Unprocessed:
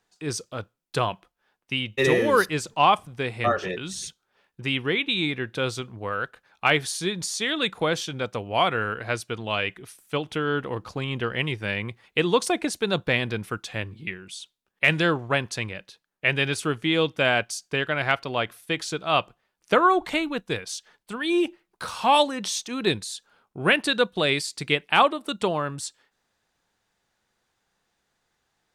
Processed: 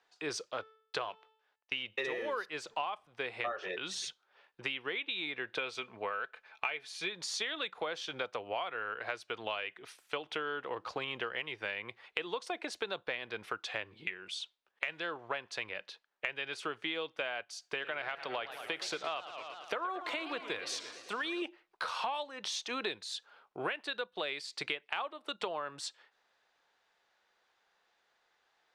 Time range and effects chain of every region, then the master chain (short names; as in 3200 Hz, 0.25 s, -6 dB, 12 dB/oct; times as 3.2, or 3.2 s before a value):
0.52–1.83 G.711 law mismatch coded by A + LPF 7400 Hz + de-hum 438.8 Hz, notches 34
5.58–7.09 bell 2400 Hz +9 dB 0.23 oct + comb 4.6 ms, depth 31%
17.6–21.42 high shelf 12000 Hz +10.5 dB + compressor 2:1, threshold -28 dBFS + warbling echo 0.113 s, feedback 70%, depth 218 cents, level -14 dB
whole clip: three-band isolator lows -20 dB, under 400 Hz, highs -17 dB, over 5100 Hz; compressor 16:1, threshold -35 dBFS; gain +2 dB